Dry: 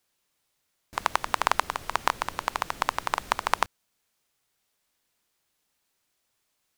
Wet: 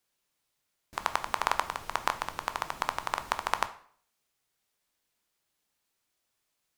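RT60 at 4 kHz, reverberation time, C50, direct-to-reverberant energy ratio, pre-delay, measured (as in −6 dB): 0.45 s, 0.55 s, 15.0 dB, 10.0 dB, 11 ms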